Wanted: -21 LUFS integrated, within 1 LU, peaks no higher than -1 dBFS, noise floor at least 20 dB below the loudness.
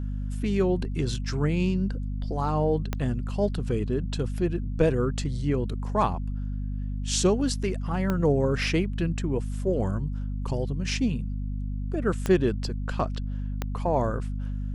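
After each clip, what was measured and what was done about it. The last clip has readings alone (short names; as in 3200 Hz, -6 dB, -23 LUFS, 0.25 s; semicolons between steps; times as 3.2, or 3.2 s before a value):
clicks 4; hum 50 Hz; harmonics up to 250 Hz; hum level -28 dBFS; loudness -27.5 LUFS; peak -8.5 dBFS; loudness target -21.0 LUFS
-> de-click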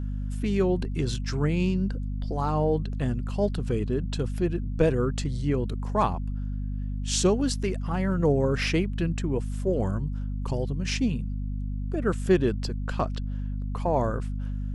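clicks 0; hum 50 Hz; harmonics up to 250 Hz; hum level -28 dBFS
-> notches 50/100/150/200/250 Hz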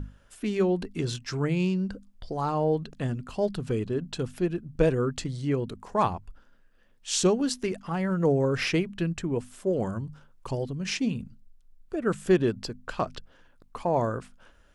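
hum none; loudness -28.5 LUFS; peak -9.0 dBFS; loudness target -21.0 LUFS
-> gain +7.5 dB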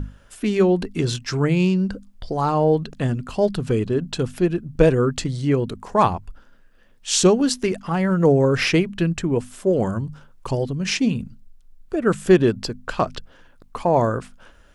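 loudness -21.0 LUFS; peak -1.5 dBFS; noise floor -51 dBFS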